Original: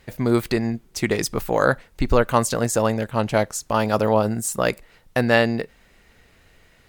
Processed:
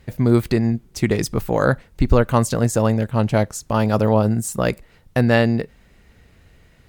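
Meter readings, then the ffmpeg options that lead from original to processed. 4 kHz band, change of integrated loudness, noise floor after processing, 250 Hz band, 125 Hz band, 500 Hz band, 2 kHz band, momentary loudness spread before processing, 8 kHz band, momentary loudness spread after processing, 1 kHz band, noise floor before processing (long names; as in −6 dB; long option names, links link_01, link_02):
−2.0 dB, +2.0 dB, −54 dBFS, +4.0 dB, +7.5 dB, +0.5 dB, −1.5 dB, 8 LU, −2.0 dB, 6 LU, −1.0 dB, −56 dBFS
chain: -af "equalizer=frequency=87:width=0.31:gain=10,volume=-2dB"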